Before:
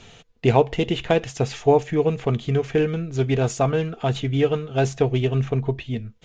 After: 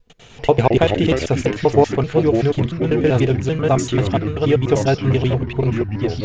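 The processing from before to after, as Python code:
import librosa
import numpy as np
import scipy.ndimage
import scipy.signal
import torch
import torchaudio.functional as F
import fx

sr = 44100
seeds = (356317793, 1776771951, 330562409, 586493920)

y = fx.block_reorder(x, sr, ms=97.0, group=4)
y = fx.echo_pitch(y, sr, ms=92, semitones=-4, count=2, db_per_echo=-6.0)
y = y * 10.0 ** (3.5 / 20.0)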